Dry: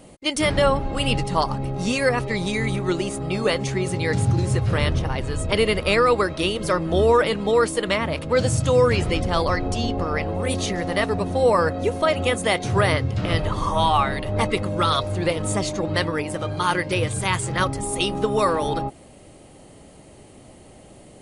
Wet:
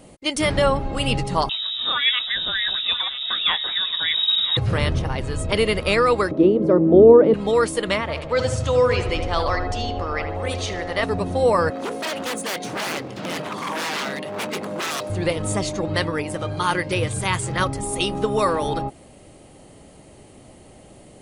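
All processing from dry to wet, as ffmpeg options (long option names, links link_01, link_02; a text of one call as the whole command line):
ffmpeg -i in.wav -filter_complex "[0:a]asettb=1/sr,asplit=3[link_01][link_02][link_03];[link_01]atrim=end=1.494[link_04];[link_02]atrim=start=1.49:end=4.57,asetpts=PTS-STARTPTS,afade=type=in:duration=0.004:curve=qsin,afade=type=out:start_time=3.076:duration=0.004:curve=qsin,aemphasis=mode=production:type=75fm,aecho=1:1:985:0.178,atrim=end_sample=135828,lowpass=frequency=3300:width_type=q:width=0.5098,lowpass=frequency=3300:width_type=q:width=0.6013,lowpass=frequency=3300:width_type=q:width=0.9,lowpass=frequency=3300:width_type=q:width=2.563,afreqshift=-3900[link_05];[link_03]atrim=start=4.566[link_06];[link_04][link_05]acrossfade=duration=0.004:curve1=hsin:curve2=qsin[link_07];[link_07][link_06]acrossfade=duration=0.004:curve1=qsin:curve2=hsin,asettb=1/sr,asplit=3[link_08][link_09][link_10];[link_08]atrim=end=6.314[link_11];[link_09]atrim=start=6.31:end=7.34,asetpts=PTS-STARTPTS,afade=type=in:duration=0.004:curve=qsin,afade=type=out:start_time=1.026:duration=0.004:curve=qsin,bandpass=frequency=310:width_type=q:width=0.91,equalizer=frequency=300:width=0.48:gain=12[link_12];[link_10]atrim=start=7.336[link_13];[link_11][link_12]acrossfade=duration=0.004:curve1=hsin:curve2=qsin[link_14];[link_14][link_13]acrossfade=duration=0.004:curve1=qsin:curve2=hsin,asettb=1/sr,asplit=3[link_15][link_16][link_17];[link_15]atrim=end=8.014[link_18];[link_16]atrim=start=8.01:end=11.03,asetpts=PTS-STARTPTS,afade=type=in:duration=0.004:curve=qsin,afade=type=out:start_time=3.016:duration=0.004:curve=qsin,lowpass=6700,equalizer=frequency=180:width_type=o:width=1.4:gain=-10,asplit=2[link_19][link_20];[link_20]adelay=76,lowpass=frequency=2100:poles=1,volume=-7dB,asplit=2[link_21][link_22];[link_22]adelay=76,lowpass=frequency=2100:poles=1,volume=0.5,asplit=2[link_23][link_24];[link_24]adelay=76,lowpass=frequency=2100:poles=1,volume=0.5,asplit=2[link_25][link_26];[link_26]adelay=76,lowpass=frequency=2100:poles=1,volume=0.5,asplit=2[link_27][link_28];[link_28]adelay=76,lowpass=frequency=2100:poles=1,volume=0.5,asplit=2[link_29][link_30];[link_30]adelay=76,lowpass=frequency=2100:poles=1,volume=0.5[link_31];[link_19][link_21][link_23][link_25][link_27][link_29][link_31]amix=inputs=7:normalize=0,atrim=end_sample=133182[link_32];[link_17]atrim=start=11.026[link_33];[link_18][link_32]acrossfade=duration=0.004:curve1=hsin:curve2=qsin[link_34];[link_34][link_33]acrossfade=duration=0.004:curve1=qsin:curve2=hsin,asettb=1/sr,asplit=3[link_35][link_36][link_37];[link_35]atrim=end=11.704[link_38];[link_36]atrim=start=11.7:end=15.1,asetpts=PTS-STARTPTS,afade=type=in:duration=0.004:curve=qsin,afade=type=out:start_time=3.396:duration=0.004:curve=qsin,bandreject=frequency=60:width_type=h:width=6,bandreject=frequency=120:width_type=h:width=6,bandreject=frequency=180:width_type=h:width=6,bandreject=frequency=240:width_type=h:width=6,bandreject=frequency=300:width_type=h:width=6,bandreject=frequency=360:width_type=h:width=6,bandreject=frequency=420:width_type=h:width=6,bandreject=frequency=480:width_type=h:width=6,aeval=exprs='0.0891*(abs(mod(val(0)/0.0891+3,4)-2)-1)':channel_layout=same,highpass=frequency=170:width=0.5412,highpass=frequency=170:width=1.3066[link_39];[link_37]atrim=start=15.096[link_40];[link_38][link_39]acrossfade=duration=0.004:curve1=hsin:curve2=qsin[link_41];[link_41][link_40]acrossfade=duration=0.004:curve1=qsin:curve2=hsin" out.wav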